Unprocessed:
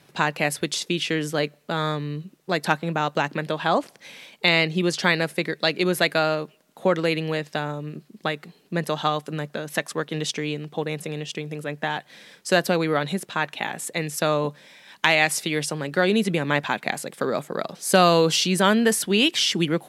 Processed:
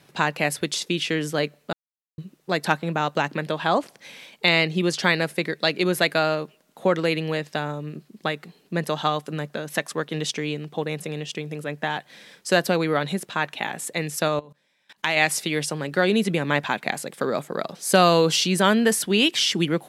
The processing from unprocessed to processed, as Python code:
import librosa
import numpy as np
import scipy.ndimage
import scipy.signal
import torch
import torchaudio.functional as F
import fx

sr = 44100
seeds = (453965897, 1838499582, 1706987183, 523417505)

y = fx.level_steps(x, sr, step_db=23, at=(14.28, 15.17))
y = fx.edit(y, sr, fx.silence(start_s=1.73, length_s=0.45), tone=tone)